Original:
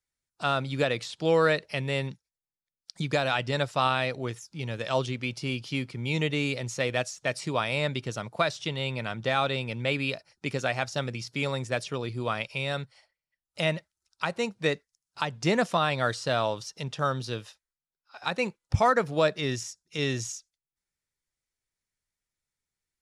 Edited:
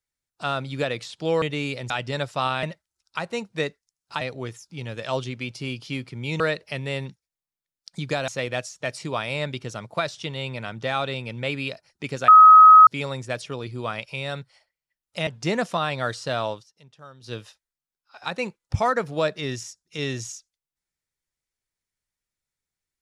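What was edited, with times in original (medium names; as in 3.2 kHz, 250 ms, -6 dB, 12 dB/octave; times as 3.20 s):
1.42–3.30 s: swap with 6.22–6.70 s
10.70–11.29 s: bleep 1.27 kHz -6 dBFS
13.69–15.27 s: move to 4.03 s
16.52–17.33 s: dip -18 dB, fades 0.12 s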